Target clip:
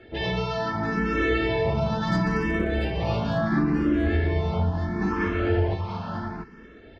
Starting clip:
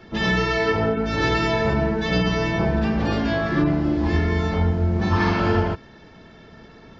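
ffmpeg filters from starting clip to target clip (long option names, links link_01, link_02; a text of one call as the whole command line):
ffmpeg -i in.wav -filter_complex "[0:a]aemphasis=mode=reproduction:type=50kf,alimiter=limit=-12.5dB:level=0:latency=1:release=359,asplit=3[link_01][link_02][link_03];[link_01]afade=type=out:start_time=1.73:duration=0.02[link_04];[link_02]asoftclip=type=hard:threshold=-15.5dB,afade=type=in:start_time=1.73:duration=0.02,afade=type=out:start_time=3.44:duration=0.02[link_05];[link_03]afade=type=in:start_time=3.44:duration=0.02[link_06];[link_04][link_05][link_06]amix=inputs=3:normalize=0,asplit=2[link_07][link_08];[link_08]aecho=0:1:685:0.531[link_09];[link_07][link_09]amix=inputs=2:normalize=0,asplit=2[link_10][link_11];[link_11]afreqshift=0.73[link_12];[link_10][link_12]amix=inputs=2:normalize=1" out.wav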